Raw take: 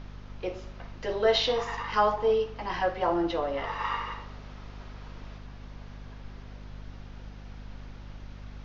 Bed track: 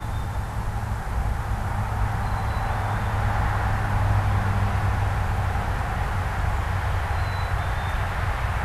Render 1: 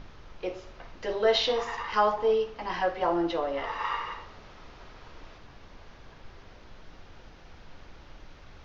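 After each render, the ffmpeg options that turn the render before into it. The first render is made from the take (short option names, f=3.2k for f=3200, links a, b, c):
-af "bandreject=f=50:t=h:w=6,bandreject=f=100:t=h:w=6,bandreject=f=150:t=h:w=6,bandreject=f=200:t=h:w=6,bandreject=f=250:t=h:w=6"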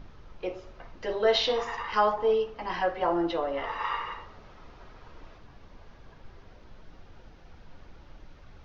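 -af "afftdn=nr=6:nf=-51"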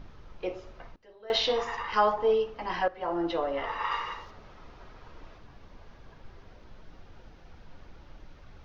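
-filter_complex "[0:a]asettb=1/sr,asplit=3[a][b][c];[a]atrim=end=3.914[d];[b]atrim=start=3.91:end=4.31,asetpts=PTS-STARTPTS,afade=t=in:d=0.004:c=qsin,afade=t=out:st=0.396:d=0.004:c=qsin,bass=f=250:g=-1,treble=f=4k:g=10[e];[c]atrim=start=4.306[f];[d][e]acrossfade=d=0.004:c1=hsin:c2=qsin[g];[g][f]acrossfade=d=0.004:c1=qsin:c2=hsin,asplit=4[h][i][j][k];[h]atrim=end=0.96,asetpts=PTS-STARTPTS,afade=t=out:st=0.72:d=0.24:c=log:silence=0.0707946[l];[i]atrim=start=0.96:end=1.3,asetpts=PTS-STARTPTS,volume=-23dB[m];[j]atrim=start=1.3:end=2.88,asetpts=PTS-STARTPTS,afade=t=in:d=0.24:c=log:silence=0.0707946,afade=t=out:st=1.576:d=0.004:c=hsin:silence=0.211349[n];[k]atrim=start=2.88,asetpts=PTS-STARTPTS,afade=t=in:d=0.48:silence=0.211349[o];[l][m][n][o]concat=n=4:v=0:a=1"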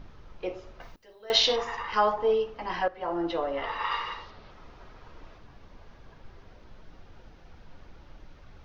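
-filter_complex "[0:a]asettb=1/sr,asplit=3[a][b][c];[a]atrim=end=0.804[d];[b]atrim=start=0.8:end=1.56,asetpts=PTS-STARTPTS,afade=t=in:d=0.004:c=qsin,afade=t=out:st=0.756:d=0.004:c=qsin,aemphasis=mode=production:type=75kf[e];[c]atrim=start=1.556[f];[d][e]acrossfade=d=0.004:c1=hsin:c2=qsin[g];[g][f]acrossfade=d=0.004:c1=qsin:c2=hsin,asettb=1/sr,asplit=3[h][i][j];[h]atrim=end=3.624[k];[i]atrim=start=3.62:end=4.51,asetpts=PTS-STARTPTS,afade=t=in:d=0.004:c=qsin,afade=t=out:st=0.886:d=0.004:c=qsin,lowpass=f=4.4k:t=q:w=1.8[l];[j]atrim=start=4.506[m];[k][l]acrossfade=d=0.004:c1=hsin:c2=qsin[n];[n][m]acrossfade=d=0.004:c1=qsin:c2=hsin"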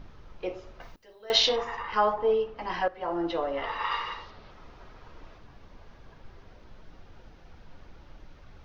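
-filter_complex "[0:a]asettb=1/sr,asplit=3[a][b][c];[a]atrim=end=1.494[d];[b]atrim=start=1.49:end=2.58,asetpts=PTS-STARTPTS,afade=t=in:d=0.004:c=qsin,afade=t=out:st=1.086:d=0.004:c=qsin,lowpass=f=3k:p=1[e];[c]atrim=start=2.576[f];[d][e]acrossfade=d=0.004:c1=hsin:c2=qsin[g];[g][f]acrossfade=d=0.004:c1=qsin:c2=hsin"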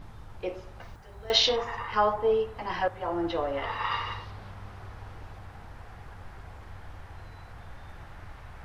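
-filter_complex "[1:a]volume=-21.5dB[a];[0:a][a]amix=inputs=2:normalize=0"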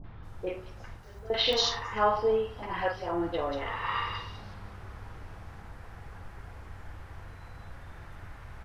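-filter_complex "[0:a]asplit=2[a][b];[b]adelay=46,volume=-10.5dB[c];[a][c]amix=inputs=2:normalize=0,acrossover=split=750|3800[d][e][f];[e]adelay=40[g];[f]adelay=230[h];[d][g][h]amix=inputs=3:normalize=0"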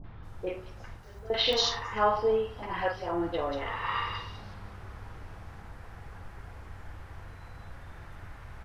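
-af anull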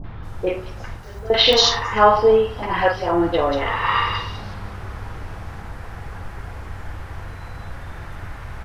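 -af "volume=12dB,alimiter=limit=-1dB:level=0:latency=1"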